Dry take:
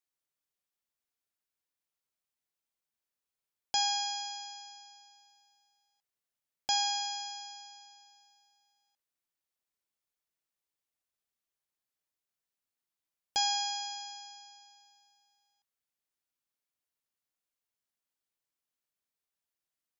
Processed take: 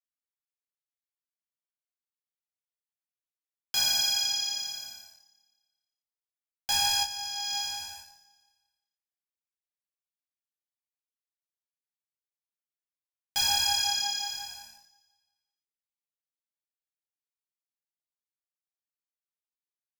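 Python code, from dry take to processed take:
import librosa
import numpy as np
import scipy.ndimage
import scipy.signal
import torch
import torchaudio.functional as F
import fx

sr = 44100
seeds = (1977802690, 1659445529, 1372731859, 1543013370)

y = fx.filter_lfo_highpass(x, sr, shape='saw_up', hz=0.16, low_hz=940.0, high_hz=3300.0, q=0.89)
y = fx.leveller(y, sr, passes=5)
y = fx.over_compress(y, sr, threshold_db=-31.0, ratio=-1.0, at=(7.03, 8.02))
y = fx.echo_feedback(y, sr, ms=252, feedback_pct=41, wet_db=-24)
y = fx.detune_double(y, sr, cents=12)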